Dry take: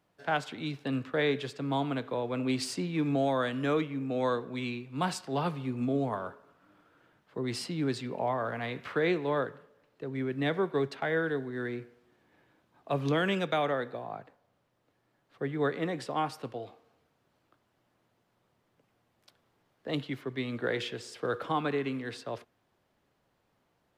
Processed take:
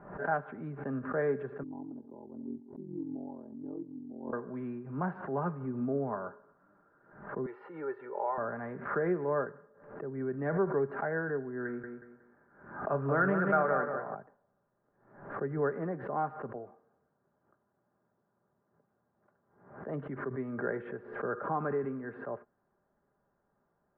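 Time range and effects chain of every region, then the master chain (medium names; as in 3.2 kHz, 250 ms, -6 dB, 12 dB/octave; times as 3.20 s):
1.63–4.33 s: cascade formant filter u + ring modulator 22 Hz
7.46–8.38 s: high-pass 530 Hz + comb 2.2 ms, depth 78%
11.65–14.15 s: peaking EQ 1.4 kHz +9 dB 0.44 oct + doubling 37 ms -11.5 dB + feedback delay 183 ms, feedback 31%, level -6.5 dB
16.55–19.88 s: high-pass 59 Hz + distance through air 280 m
whole clip: elliptic low-pass 1.6 kHz, stop band 80 dB; comb 5 ms, depth 42%; swell ahead of each attack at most 89 dB/s; trim -2.5 dB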